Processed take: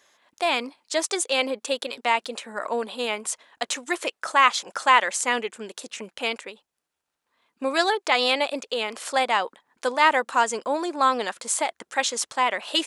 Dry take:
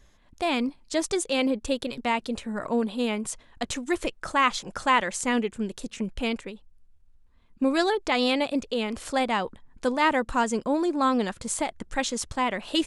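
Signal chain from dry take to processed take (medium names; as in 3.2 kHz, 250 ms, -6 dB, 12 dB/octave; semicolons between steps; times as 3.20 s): high-pass 570 Hz 12 dB/octave; trim +5 dB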